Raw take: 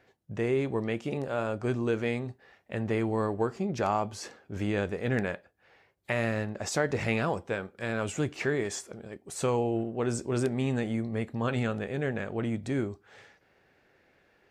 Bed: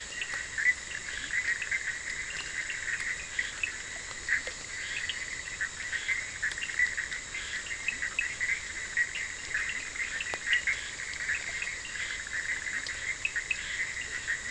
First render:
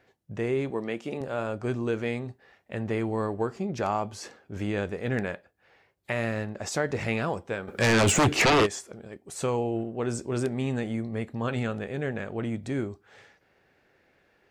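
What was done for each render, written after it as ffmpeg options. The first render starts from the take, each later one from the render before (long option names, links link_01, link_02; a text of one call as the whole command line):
ffmpeg -i in.wav -filter_complex "[0:a]asettb=1/sr,asplit=3[link_01][link_02][link_03];[link_01]atrim=end=0.704[link_04];[link_02]atrim=start=0.7:end=1.21,asetpts=PTS-STARTPTS,afade=type=in:duration=0.004:curve=qsin,afade=type=out:start_time=0.506:duration=0.004:curve=qsin,highpass=190[link_05];[link_03]atrim=start=1.206[link_06];[link_04][link_05]acrossfade=duration=0.004:curve1=hsin:curve2=qsin[link_07];[link_07][link_06]acrossfade=duration=0.004:curve1=qsin:curve2=hsin,asplit=3[link_08][link_09][link_10];[link_08]afade=type=out:start_time=7.67:duration=0.02[link_11];[link_09]aeval=exprs='0.15*sin(PI/2*4.47*val(0)/0.15)':channel_layout=same,afade=type=in:start_time=7.67:duration=0.02,afade=type=out:start_time=8.65:duration=0.02[link_12];[link_10]afade=type=in:start_time=8.65:duration=0.02[link_13];[link_11][link_12][link_13]amix=inputs=3:normalize=0" out.wav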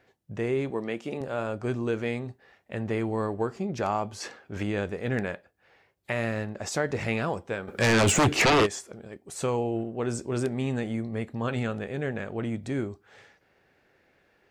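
ffmpeg -i in.wav -filter_complex "[0:a]asettb=1/sr,asplit=3[link_01][link_02][link_03];[link_01]atrim=end=4.204[link_04];[link_02]atrim=start=4.2:end=4.63,asetpts=PTS-STARTPTS,afade=type=in:duration=0.004:curve=qsin,afade=type=out:start_time=0.426:duration=0.004:curve=qsin,equalizer=frequency=1900:width=0.34:gain=6.5[link_05];[link_03]atrim=start=4.626[link_06];[link_04][link_05]acrossfade=duration=0.004:curve1=hsin:curve2=qsin[link_07];[link_07][link_06]acrossfade=duration=0.004:curve1=qsin:curve2=hsin" out.wav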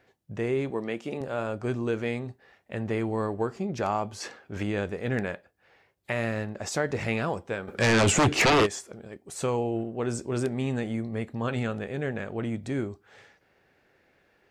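ffmpeg -i in.wav -filter_complex "[0:a]asettb=1/sr,asplit=3[link_01][link_02][link_03];[link_01]atrim=end=7.754[link_04];[link_02]atrim=start=7.75:end=8.37,asetpts=PTS-STARTPTS,afade=type=in:duration=0.004:curve=qsin,afade=type=out:start_time=0.616:duration=0.004:curve=qsin,lowpass=10000[link_05];[link_03]atrim=start=8.366[link_06];[link_04][link_05]acrossfade=duration=0.004:curve1=hsin:curve2=qsin[link_07];[link_07][link_06]acrossfade=duration=0.004:curve1=qsin:curve2=hsin" out.wav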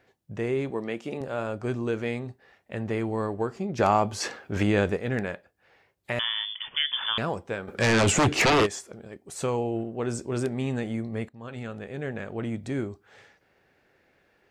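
ffmpeg -i in.wav -filter_complex "[0:a]asplit=3[link_01][link_02][link_03];[link_01]afade=type=out:start_time=3.78:duration=0.02[link_04];[link_02]acontrast=67,afade=type=in:start_time=3.78:duration=0.02,afade=type=out:start_time=4.96:duration=0.02[link_05];[link_03]afade=type=in:start_time=4.96:duration=0.02[link_06];[link_04][link_05][link_06]amix=inputs=3:normalize=0,asettb=1/sr,asplit=3[link_07][link_08][link_09];[link_07]atrim=end=6.194[link_10];[link_08]atrim=start=6.19:end=7.18,asetpts=PTS-STARTPTS,afade=type=in:duration=0.004:curve=qsin,afade=type=out:start_time=0.986:duration=0.004:curve=qsin,lowpass=frequency=3100:width_type=q:width=0.5098,lowpass=frequency=3100:width_type=q:width=0.6013,lowpass=frequency=3100:width_type=q:width=0.9,lowpass=frequency=3100:width_type=q:width=2.563,afreqshift=-3600[link_11];[link_09]atrim=start=7.176[link_12];[link_10][link_11]acrossfade=duration=0.004:curve1=hsin:curve2=qsin[link_13];[link_13][link_12]acrossfade=duration=0.004:curve1=qsin:curve2=hsin,asplit=2[link_14][link_15];[link_14]atrim=end=11.29,asetpts=PTS-STARTPTS,afade=type=out:start_time=11.286:duration=0.004:curve=hsin:silence=0.133352[link_16];[link_15]atrim=start=11.29,asetpts=PTS-STARTPTS,afade=type=in:duration=1.45:curve=qsin:silence=0.133352[link_17];[link_16][link_17]concat=n=2:v=0:a=1" out.wav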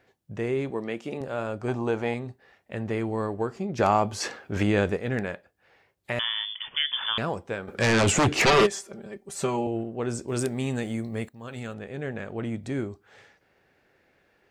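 ffmpeg -i in.wav -filter_complex "[0:a]asettb=1/sr,asplit=3[link_01][link_02][link_03];[link_01]atrim=end=1.684[link_04];[link_02]atrim=start=1.68:end=2.14,asetpts=PTS-STARTPTS,afade=type=in:duration=0.004:curve=qsin,afade=type=out:start_time=0.456:duration=0.004:curve=qsin,equalizer=frequency=830:width_type=o:width=0.65:gain=13.5[link_05];[link_03]atrim=start=2.136[link_06];[link_04][link_05]acrossfade=duration=0.004:curve1=hsin:curve2=qsin[link_07];[link_07][link_06]acrossfade=duration=0.004:curve1=qsin:curve2=hsin,asettb=1/sr,asplit=3[link_08][link_09][link_10];[link_08]atrim=end=8.464[link_11];[link_09]atrim=start=8.46:end=9.67,asetpts=PTS-STARTPTS,afade=type=in:duration=0.004:curve=qsin,afade=type=out:start_time=1.206:duration=0.004:curve=qsin,aecho=1:1:5.1:0.82,atrim=end_sample=53361[link_12];[link_10]atrim=start=9.666[link_13];[link_11][link_12]acrossfade=duration=0.004:curve1=hsin:curve2=qsin[link_14];[link_14][link_13]acrossfade=duration=0.004:curve1=qsin:curve2=hsin,asettb=1/sr,asplit=3[link_15][link_16][link_17];[link_15]atrim=end=10.284[link_18];[link_16]atrim=start=10.28:end=11.74,asetpts=PTS-STARTPTS,afade=type=in:duration=0.004:curve=qsin,afade=type=out:start_time=1.456:duration=0.004:curve=qsin,aemphasis=mode=production:type=50kf[link_19];[link_17]atrim=start=11.736[link_20];[link_18][link_19]acrossfade=duration=0.004:curve1=hsin:curve2=qsin[link_21];[link_21][link_20]acrossfade=duration=0.004:curve1=qsin:curve2=hsin" out.wav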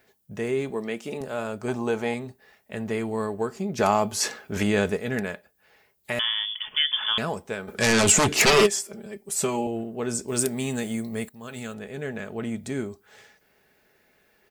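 ffmpeg -i in.wav -af "aemphasis=mode=production:type=50fm,aecho=1:1:4.7:0.37" out.wav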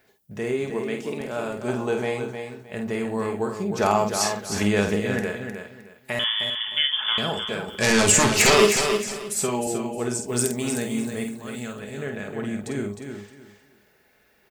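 ffmpeg -i in.wav -filter_complex "[0:a]asplit=2[link_01][link_02];[link_02]adelay=49,volume=-6dB[link_03];[link_01][link_03]amix=inputs=2:normalize=0,aecho=1:1:309|618|927:0.447|0.107|0.0257" out.wav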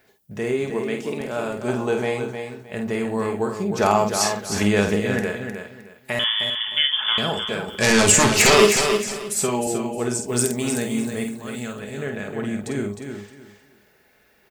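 ffmpeg -i in.wav -af "volume=2.5dB,alimiter=limit=-3dB:level=0:latency=1" out.wav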